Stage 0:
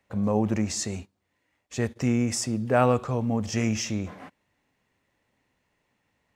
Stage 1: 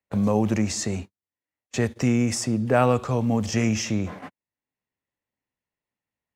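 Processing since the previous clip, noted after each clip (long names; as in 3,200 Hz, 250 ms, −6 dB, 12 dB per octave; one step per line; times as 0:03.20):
noise gate −42 dBFS, range −33 dB
multiband upward and downward compressor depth 40%
level +3 dB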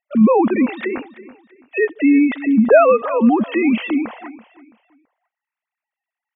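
three sine waves on the formant tracks
repeating echo 332 ms, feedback 32%, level −18 dB
level +8 dB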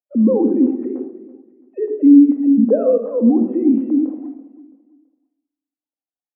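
flat-topped band-pass 340 Hz, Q 1.3
rectangular room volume 2,000 cubic metres, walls furnished, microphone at 2.1 metres
level −1 dB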